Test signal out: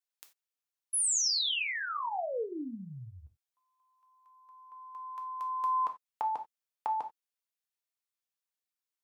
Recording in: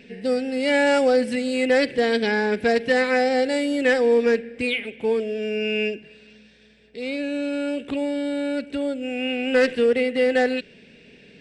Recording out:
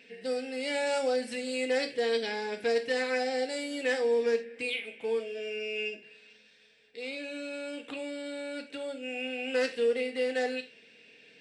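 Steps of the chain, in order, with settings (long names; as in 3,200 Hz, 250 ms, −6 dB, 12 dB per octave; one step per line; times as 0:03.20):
high-pass filter 870 Hz 6 dB per octave
dynamic equaliser 1,600 Hz, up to −6 dB, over −36 dBFS, Q 0.75
reverb whose tail is shaped and stops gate 110 ms falling, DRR 4.5 dB
level −5 dB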